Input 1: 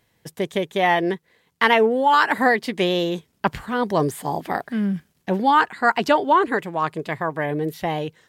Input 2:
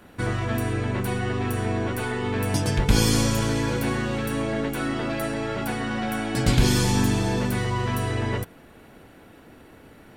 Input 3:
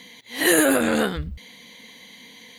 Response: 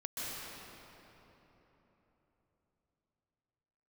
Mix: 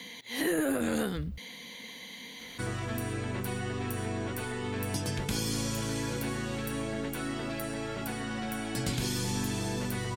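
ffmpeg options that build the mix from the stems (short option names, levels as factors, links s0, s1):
-filter_complex "[1:a]highshelf=f=3800:g=9,adelay=2400,volume=0.422[s0];[2:a]bandreject=f=7800:w=17,acrossover=split=2500[s1][s2];[s2]acompressor=threshold=0.0398:ratio=4:attack=1:release=60[s3];[s1][s3]amix=inputs=2:normalize=0,volume=1.06[s4];[s0][s4]amix=inputs=2:normalize=0,acrossover=split=100|430|5500[s5][s6][s7][s8];[s5]acompressor=threshold=0.00708:ratio=4[s9];[s6]acompressor=threshold=0.0282:ratio=4[s10];[s7]acompressor=threshold=0.0141:ratio=4[s11];[s8]acompressor=threshold=0.00891:ratio=4[s12];[s9][s10][s11][s12]amix=inputs=4:normalize=0"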